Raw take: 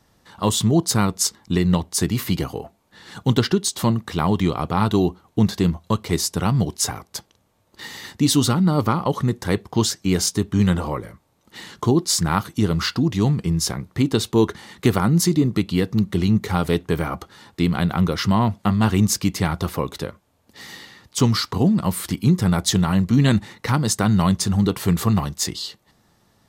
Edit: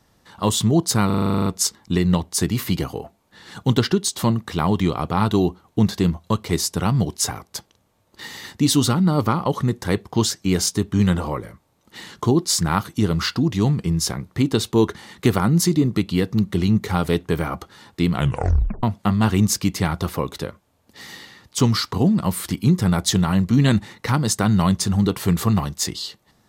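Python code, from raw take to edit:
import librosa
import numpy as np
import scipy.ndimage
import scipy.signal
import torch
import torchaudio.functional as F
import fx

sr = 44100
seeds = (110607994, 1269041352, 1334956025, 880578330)

y = fx.edit(x, sr, fx.stutter(start_s=1.06, slice_s=0.04, count=11),
    fx.tape_stop(start_s=17.73, length_s=0.7), tone=tone)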